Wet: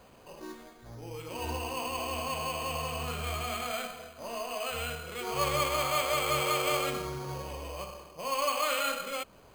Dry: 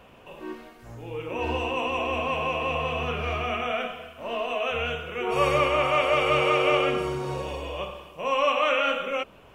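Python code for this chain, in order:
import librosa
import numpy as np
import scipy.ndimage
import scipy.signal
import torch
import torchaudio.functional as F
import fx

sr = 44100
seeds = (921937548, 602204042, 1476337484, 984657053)

y = fx.dynamic_eq(x, sr, hz=420.0, q=0.84, threshold_db=-38.0, ratio=4.0, max_db=-6)
y = np.repeat(scipy.signal.resample_poly(y, 1, 8), 8)[:len(y)]
y = y * 10.0 ** (-4.0 / 20.0)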